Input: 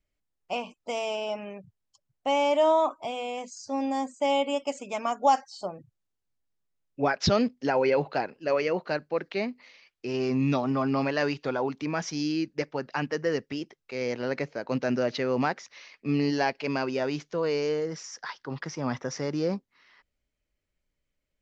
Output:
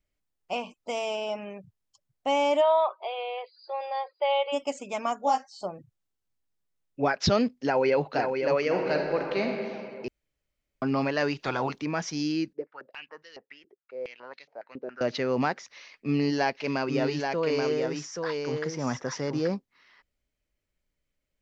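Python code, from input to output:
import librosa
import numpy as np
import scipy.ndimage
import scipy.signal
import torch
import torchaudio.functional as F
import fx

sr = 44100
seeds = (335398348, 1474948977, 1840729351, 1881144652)

y = fx.brickwall_bandpass(x, sr, low_hz=350.0, high_hz=4900.0, at=(2.6, 4.52), fade=0.02)
y = fx.detune_double(y, sr, cents=18, at=(5.19, 5.59), fade=0.02)
y = fx.echo_throw(y, sr, start_s=7.59, length_s=0.54, ms=510, feedback_pct=50, wet_db=-5.5)
y = fx.reverb_throw(y, sr, start_s=8.65, length_s=0.81, rt60_s=2.3, drr_db=1.5)
y = fx.spec_clip(y, sr, under_db=16, at=(11.38, 11.78), fade=0.02)
y = fx.filter_held_bandpass(y, sr, hz=7.2, low_hz=400.0, high_hz=3700.0, at=(12.53, 15.01))
y = fx.echo_single(y, sr, ms=830, db=-4.5, at=(16.56, 19.48), fade=0.02)
y = fx.edit(y, sr, fx.room_tone_fill(start_s=10.08, length_s=0.74), tone=tone)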